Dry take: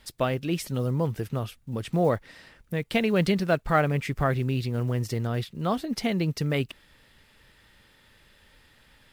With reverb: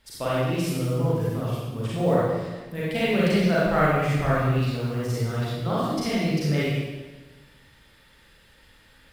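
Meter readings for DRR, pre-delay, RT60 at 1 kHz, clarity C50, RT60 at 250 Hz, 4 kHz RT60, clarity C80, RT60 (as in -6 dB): -9.0 dB, 33 ms, 1.2 s, -4.5 dB, 1.4 s, 1.1 s, -0.5 dB, 1.3 s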